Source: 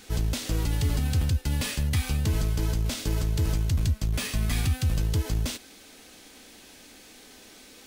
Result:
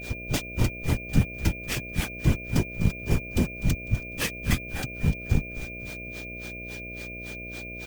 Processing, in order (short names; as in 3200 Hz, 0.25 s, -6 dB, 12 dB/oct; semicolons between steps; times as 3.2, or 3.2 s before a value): dynamic EQ 4200 Hz, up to -6 dB, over -52 dBFS, Q 3.4; in parallel at -3 dB: limiter -22 dBFS, peak gain reduction 7 dB; on the sum: whisperiser; grains 0.15 s, grains 3.6/s, spray 15 ms, pitch spread up and down by 0 st; whine 2400 Hz -41 dBFS; careless resampling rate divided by 2×, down filtered, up hold; on a send: frequency-shifting echo 0.25 s, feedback 39%, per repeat -83 Hz, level -15 dB; on the sum: buzz 60 Hz, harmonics 11, -45 dBFS -3 dB/oct; gain +3.5 dB